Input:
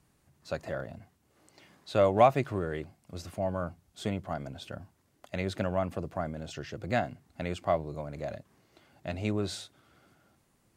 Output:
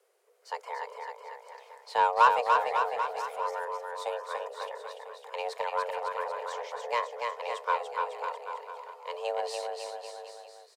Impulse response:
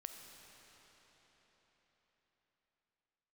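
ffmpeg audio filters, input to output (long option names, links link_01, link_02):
-af "afreqshift=350,aeval=exprs='0.376*(cos(1*acos(clip(val(0)/0.376,-1,1)))-cos(1*PI/2))+0.0133*(cos(7*acos(clip(val(0)/0.376,-1,1)))-cos(7*PI/2))':channel_layout=same,aecho=1:1:290|551|785.9|997.3|1188:0.631|0.398|0.251|0.158|0.1"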